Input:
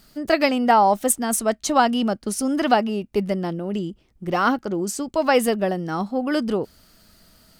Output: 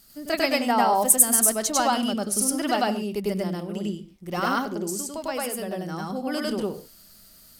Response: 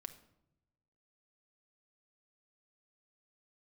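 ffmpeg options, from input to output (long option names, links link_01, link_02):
-filter_complex "[0:a]equalizer=frequency=13000:width_type=o:width=1.9:gain=14,asettb=1/sr,asplit=3[link_01][link_02][link_03];[link_01]atrim=end=4.804[link_04];[link_02]atrim=start=4.8:end=6.05,asetpts=PTS-STARTPTS,afade=type=in:duration=0.004:curve=qsin,afade=type=out:start_time=1.246:duration=0.004:curve=qsin,acompressor=threshold=-24dB:ratio=2.5[link_05];[link_03]atrim=start=6.046[link_06];[link_04][link_05]acrossfade=duration=0.004:curve1=hsin:curve2=qsin[link_07];[link_07][link_06]acrossfade=duration=0.004:curve1=qsin:curve2=hsin,asplit=2[link_08][link_09];[1:a]atrim=start_sample=2205,atrim=end_sample=6615,adelay=99[link_10];[link_09][link_10]afir=irnorm=-1:irlink=0,volume=6dB[link_11];[link_08][link_11]amix=inputs=2:normalize=0,volume=-8.5dB"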